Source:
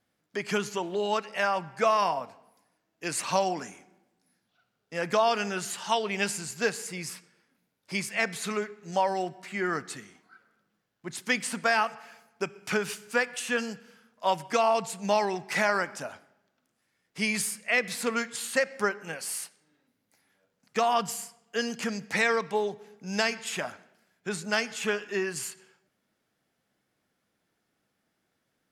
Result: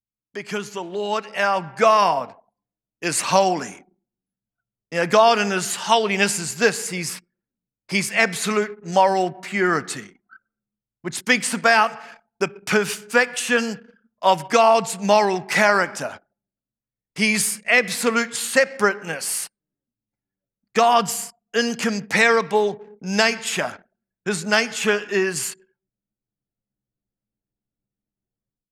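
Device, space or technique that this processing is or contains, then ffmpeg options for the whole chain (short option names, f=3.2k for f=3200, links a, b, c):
voice memo with heavy noise removal: -af "anlmdn=0.00251,dynaudnorm=f=890:g=3:m=12.5dB"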